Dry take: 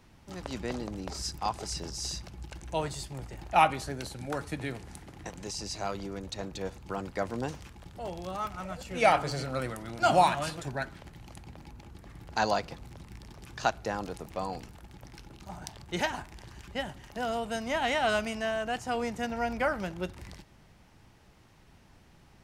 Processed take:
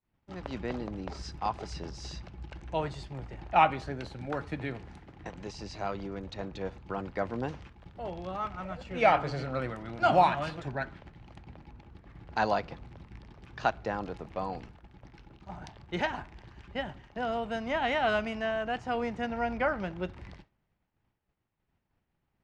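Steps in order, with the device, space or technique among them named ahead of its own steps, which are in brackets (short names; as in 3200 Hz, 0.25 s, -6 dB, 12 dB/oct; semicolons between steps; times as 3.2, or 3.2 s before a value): hearing-loss simulation (LPF 3100 Hz 12 dB/oct; expander -44 dBFS)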